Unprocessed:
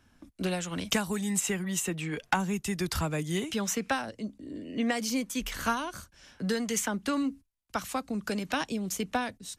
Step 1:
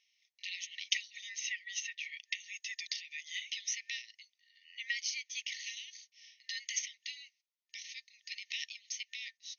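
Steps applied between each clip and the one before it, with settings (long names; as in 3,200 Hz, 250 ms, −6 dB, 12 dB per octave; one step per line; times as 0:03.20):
brick-wall band-pass 1,800–6,600 Hz
level −1 dB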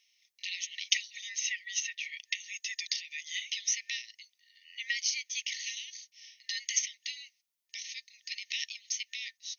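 high-shelf EQ 5,400 Hz +8.5 dB
level +2 dB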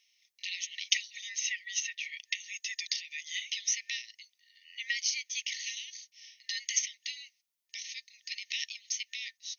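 no processing that can be heard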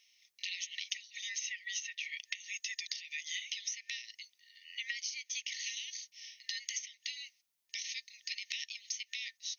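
downward compressor 16 to 1, threshold −38 dBFS, peak gain reduction 18 dB
level +2.5 dB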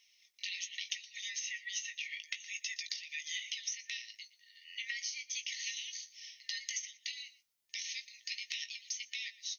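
flanger 0.32 Hz, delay 0.9 ms, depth 9.7 ms, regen +56%
double-tracking delay 19 ms −10 dB
single-tap delay 118 ms −18.5 dB
level +3.5 dB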